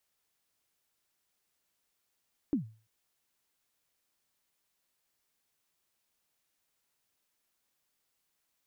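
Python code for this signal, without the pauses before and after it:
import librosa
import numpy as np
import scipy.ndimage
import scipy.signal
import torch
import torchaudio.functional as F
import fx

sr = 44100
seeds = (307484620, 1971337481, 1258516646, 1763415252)

y = fx.drum_kick(sr, seeds[0], length_s=0.34, level_db=-22.5, start_hz=320.0, end_hz=110.0, sweep_ms=115.0, decay_s=0.37, click=False)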